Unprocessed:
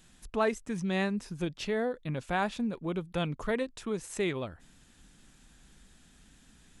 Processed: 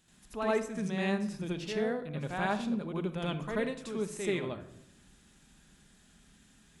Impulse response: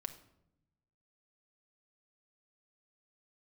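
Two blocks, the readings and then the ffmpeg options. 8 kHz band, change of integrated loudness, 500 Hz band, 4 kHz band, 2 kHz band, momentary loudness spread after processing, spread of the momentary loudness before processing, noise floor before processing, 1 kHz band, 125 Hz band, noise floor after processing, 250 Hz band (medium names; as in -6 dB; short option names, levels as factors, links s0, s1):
-1.5 dB, -1.0 dB, -1.0 dB, -1.5 dB, -1.5 dB, 6 LU, 7 LU, -60 dBFS, -1.5 dB, -1.0 dB, -62 dBFS, -0.5 dB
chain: -filter_complex "[0:a]highpass=f=55:p=1,asplit=2[s0][s1];[1:a]atrim=start_sample=2205,adelay=81[s2];[s1][s2]afir=irnorm=-1:irlink=0,volume=2.51[s3];[s0][s3]amix=inputs=2:normalize=0,volume=0.398"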